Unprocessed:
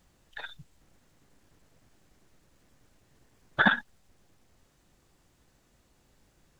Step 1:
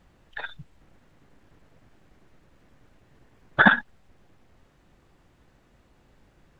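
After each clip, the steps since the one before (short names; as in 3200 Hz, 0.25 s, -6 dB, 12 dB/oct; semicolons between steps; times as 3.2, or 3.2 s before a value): tone controls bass 0 dB, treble -13 dB; gain +6.5 dB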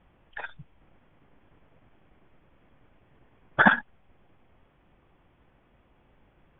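rippled Chebyshev low-pass 3400 Hz, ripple 3 dB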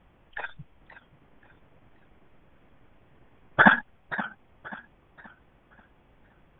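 warbling echo 0.53 s, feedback 36%, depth 160 cents, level -15 dB; gain +2 dB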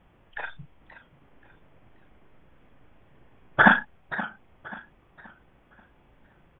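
doubler 36 ms -8 dB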